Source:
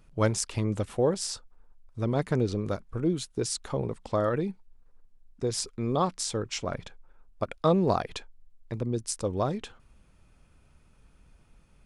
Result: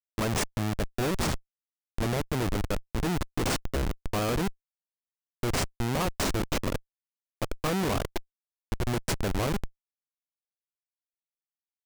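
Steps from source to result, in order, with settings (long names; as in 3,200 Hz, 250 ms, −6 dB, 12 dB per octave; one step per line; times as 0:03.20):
spectral magnitudes quantised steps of 30 dB
tape wow and flutter 25 cents
comparator with hysteresis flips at −29 dBFS
level +5 dB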